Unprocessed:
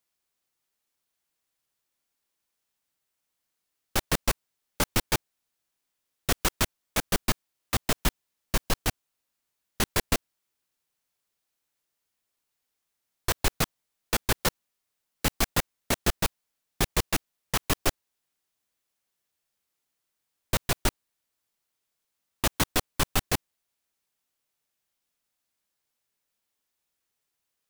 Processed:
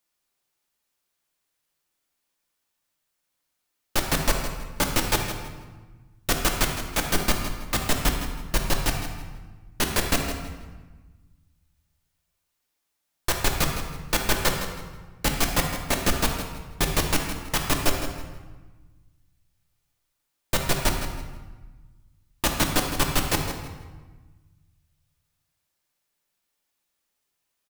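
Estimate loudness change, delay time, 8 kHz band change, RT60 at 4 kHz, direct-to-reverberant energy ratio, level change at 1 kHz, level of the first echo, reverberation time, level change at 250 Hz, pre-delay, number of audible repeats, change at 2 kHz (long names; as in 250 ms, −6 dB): +3.0 dB, 161 ms, +3.0 dB, 0.95 s, 1.0 dB, +4.0 dB, −10.5 dB, 1.3 s, +4.0 dB, 3 ms, 2, +4.0 dB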